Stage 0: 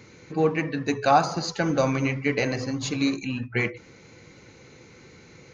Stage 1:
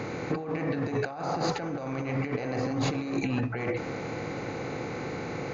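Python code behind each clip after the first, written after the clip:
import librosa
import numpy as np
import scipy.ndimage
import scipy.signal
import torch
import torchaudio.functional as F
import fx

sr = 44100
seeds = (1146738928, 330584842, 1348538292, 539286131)

y = fx.bin_compress(x, sr, power=0.6)
y = fx.high_shelf(y, sr, hz=2700.0, db=-12.0)
y = fx.over_compress(y, sr, threshold_db=-28.0, ratio=-1.0)
y = F.gain(torch.from_numpy(y), -2.5).numpy()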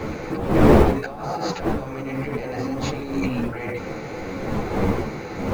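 y = fx.dmg_wind(x, sr, seeds[0], corner_hz=460.0, level_db=-26.0)
y = fx.quant_float(y, sr, bits=4)
y = fx.ensemble(y, sr)
y = F.gain(torch.from_numpy(y), 5.5).numpy()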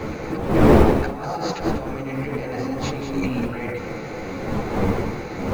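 y = x + 10.0 ** (-9.0 / 20.0) * np.pad(x, (int(195 * sr / 1000.0), 0))[:len(x)]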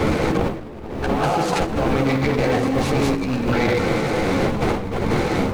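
y = fx.over_compress(x, sr, threshold_db=-28.0, ratio=-1.0)
y = fx.noise_mod_delay(y, sr, seeds[1], noise_hz=1600.0, depth_ms=0.036)
y = F.gain(torch.from_numpy(y), 6.0).numpy()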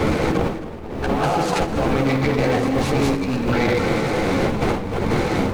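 y = x + 10.0 ** (-15.0 / 20.0) * np.pad(x, (int(270 * sr / 1000.0), 0))[:len(x)]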